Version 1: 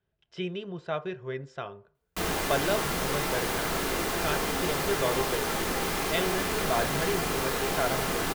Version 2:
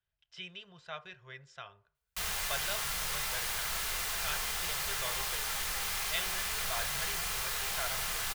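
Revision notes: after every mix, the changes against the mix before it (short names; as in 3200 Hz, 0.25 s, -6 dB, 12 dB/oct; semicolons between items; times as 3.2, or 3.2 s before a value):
master: add passive tone stack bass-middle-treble 10-0-10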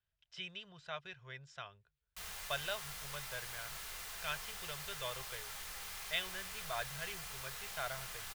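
speech: send off; background -11.5 dB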